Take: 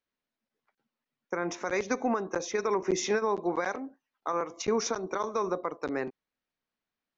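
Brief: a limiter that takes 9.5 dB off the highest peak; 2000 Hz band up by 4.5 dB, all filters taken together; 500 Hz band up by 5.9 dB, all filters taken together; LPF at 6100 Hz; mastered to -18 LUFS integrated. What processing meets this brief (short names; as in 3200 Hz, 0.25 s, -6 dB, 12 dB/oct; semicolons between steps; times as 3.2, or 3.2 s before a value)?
LPF 6100 Hz; bell 500 Hz +7 dB; bell 2000 Hz +5.5 dB; gain +13.5 dB; limiter -7.5 dBFS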